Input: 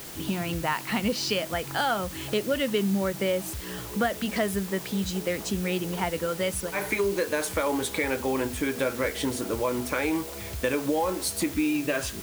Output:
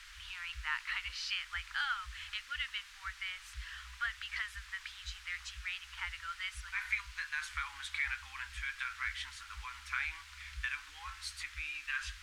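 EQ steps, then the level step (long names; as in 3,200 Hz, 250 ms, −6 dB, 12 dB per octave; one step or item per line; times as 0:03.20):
inverse Chebyshev band-stop filter 120–640 Hz, stop band 50 dB
low-pass filter 2,000 Hz 6 dB per octave
high-frequency loss of the air 55 metres
0.0 dB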